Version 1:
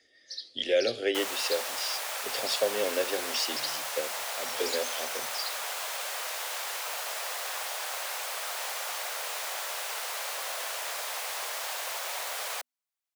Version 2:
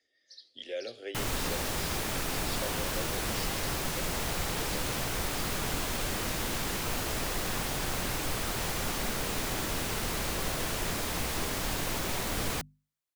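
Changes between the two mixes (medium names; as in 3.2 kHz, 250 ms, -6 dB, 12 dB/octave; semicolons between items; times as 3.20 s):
speech -12.0 dB; background: remove steep high-pass 550 Hz 36 dB/octave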